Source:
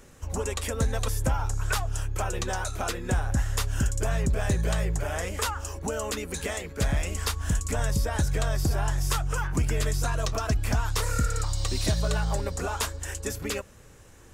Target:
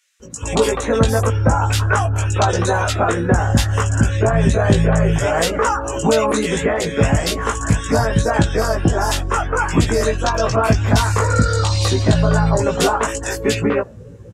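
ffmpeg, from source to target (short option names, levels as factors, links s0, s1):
-filter_complex "[0:a]asplit=2[s0][s1];[s1]adelay=18,volume=0.794[s2];[s0][s2]amix=inputs=2:normalize=0,afftdn=nr=18:nf=-45,asplit=2[s3][s4];[s4]acompressor=threshold=0.02:ratio=6,volume=1.26[s5];[s3][s5]amix=inputs=2:normalize=0,highpass=99,acontrast=71,lowpass=f=3100:p=1,acrossover=split=2100[s6][s7];[s6]adelay=200[s8];[s8][s7]amix=inputs=2:normalize=0,volume=1.58"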